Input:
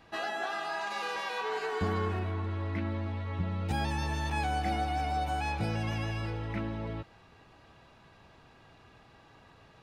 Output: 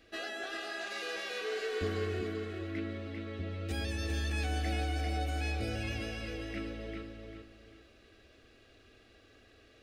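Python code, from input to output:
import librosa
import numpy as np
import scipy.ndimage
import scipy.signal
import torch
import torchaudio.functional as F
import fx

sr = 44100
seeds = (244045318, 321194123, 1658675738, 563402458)

p1 = fx.fixed_phaser(x, sr, hz=380.0, stages=4)
y = p1 + fx.echo_feedback(p1, sr, ms=395, feedback_pct=30, wet_db=-6, dry=0)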